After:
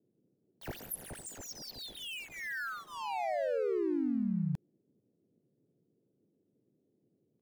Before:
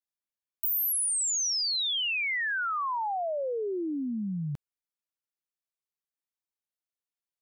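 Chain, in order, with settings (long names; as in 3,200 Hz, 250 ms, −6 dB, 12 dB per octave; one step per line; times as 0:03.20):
running median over 41 samples
noise in a band 110–390 Hz −75 dBFS
pitch-shifted copies added +3 semitones −1 dB
level −2.5 dB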